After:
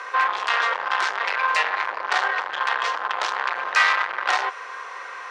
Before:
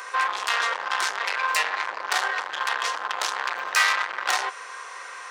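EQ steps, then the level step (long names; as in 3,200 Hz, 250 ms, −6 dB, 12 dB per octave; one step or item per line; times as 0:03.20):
low-pass filter 3,200 Hz 6 dB per octave
dynamic equaliser 230 Hz, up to −4 dB, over −50 dBFS, Q 1.2
high-frequency loss of the air 69 metres
+4.5 dB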